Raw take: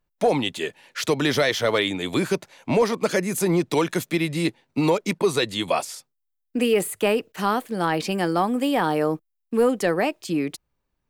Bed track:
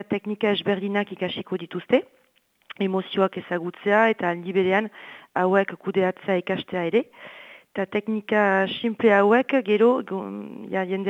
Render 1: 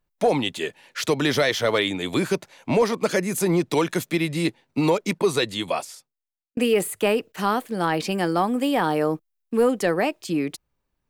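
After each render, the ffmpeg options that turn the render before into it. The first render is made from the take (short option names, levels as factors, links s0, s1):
-filter_complex "[0:a]asplit=2[s0][s1];[s0]atrim=end=6.57,asetpts=PTS-STARTPTS,afade=t=out:st=5.41:d=1.16[s2];[s1]atrim=start=6.57,asetpts=PTS-STARTPTS,afade=t=in:d=0.004:c=hsin[s3];[s2][s3]concat=n=2:v=0:a=1"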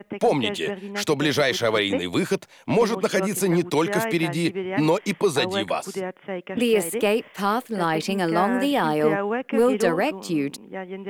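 -filter_complex "[1:a]volume=0.398[s0];[0:a][s0]amix=inputs=2:normalize=0"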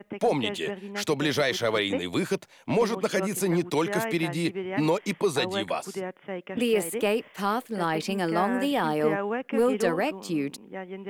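-af "volume=0.631"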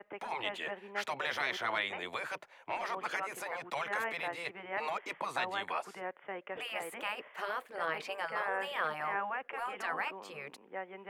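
-filter_complex "[0:a]afftfilt=real='re*lt(hypot(re,im),0.2)':imag='im*lt(hypot(re,im),0.2)':win_size=1024:overlap=0.75,acrossover=split=480 2500:gain=0.112 1 0.158[s0][s1][s2];[s0][s1][s2]amix=inputs=3:normalize=0"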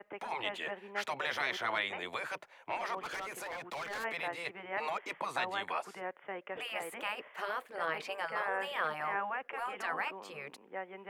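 -filter_complex "[0:a]asplit=3[s0][s1][s2];[s0]afade=t=out:st=2.97:d=0.02[s3];[s1]asoftclip=type=hard:threshold=0.015,afade=t=in:st=2.97:d=0.02,afade=t=out:st=4.03:d=0.02[s4];[s2]afade=t=in:st=4.03:d=0.02[s5];[s3][s4][s5]amix=inputs=3:normalize=0"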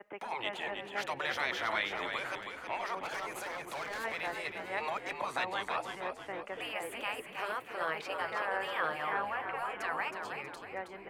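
-filter_complex "[0:a]asplit=6[s0][s1][s2][s3][s4][s5];[s1]adelay=320,afreqshift=-57,volume=0.473[s6];[s2]adelay=640,afreqshift=-114,volume=0.214[s7];[s3]adelay=960,afreqshift=-171,volume=0.0955[s8];[s4]adelay=1280,afreqshift=-228,volume=0.0432[s9];[s5]adelay=1600,afreqshift=-285,volume=0.0195[s10];[s0][s6][s7][s8][s9][s10]amix=inputs=6:normalize=0"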